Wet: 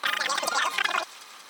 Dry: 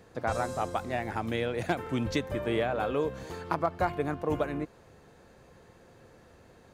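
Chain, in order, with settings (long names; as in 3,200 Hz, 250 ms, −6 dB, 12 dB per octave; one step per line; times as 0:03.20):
meter weighting curve A
in parallel at +1 dB: downward compressor, threshold −41 dBFS, peak gain reduction 16.5 dB
on the sum: time stretch by overlap-add 0.52×, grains 45 ms
on a send: delay with a high-pass on its return 432 ms, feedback 73%, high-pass 2,200 Hz, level −12 dB
on the sum: wrong playback speed 33 rpm record played at 78 rpm
level +6 dB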